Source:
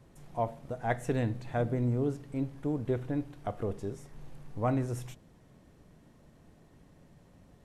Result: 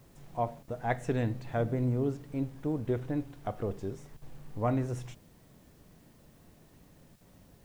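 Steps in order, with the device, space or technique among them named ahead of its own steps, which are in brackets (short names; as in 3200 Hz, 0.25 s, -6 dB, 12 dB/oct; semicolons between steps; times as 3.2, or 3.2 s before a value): worn cassette (LPF 7700 Hz; wow and flutter; level dips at 0.63/4.17/7.16, 48 ms -14 dB; white noise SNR 34 dB)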